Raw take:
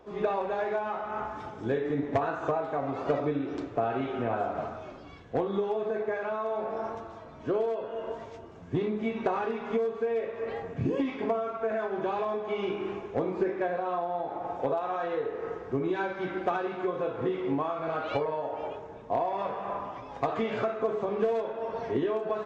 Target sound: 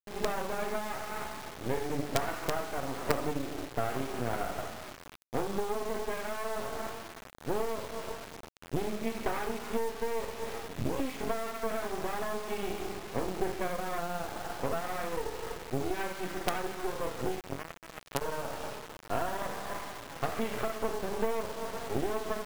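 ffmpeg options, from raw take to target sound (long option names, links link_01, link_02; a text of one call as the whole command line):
ffmpeg -i in.wav -filter_complex "[0:a]asplit=3[link_01][link_02][link_03];[link_01]afade=type=out:start_time=17.39:duration=0.02[link_04];[link_02]aeval=exprs='0.133*(cos(1*acos(clip(val(0)/0.133,-1,1)))-cos(1*PI/2))+0.00473*(cos(2*acos(clip(val(0)/0.133,-1,1)))-cos(2*PI/2))+0.0422*(cos(3*acos(clip(val(0)/0.133,-1,1)))-cos(3*PI/2))+0.00075*(cos(7*acos(clip(val(0)/0.133,-1,1)))-cos(7*PI/2))':channel_layout=same,afade=type=in:start_time=17.39:duration=0.02,afade=type=out:start_time=18.21:duration=0.02[link_05];[link_03]afade=type=in:start_time=18.21:duration=0.02[link_06];[link_04][link_05][link_06]amix=inputs=3:normalize=0,acrusher=bits=4:dc=4:mix=0:aa=0.000001" out.wav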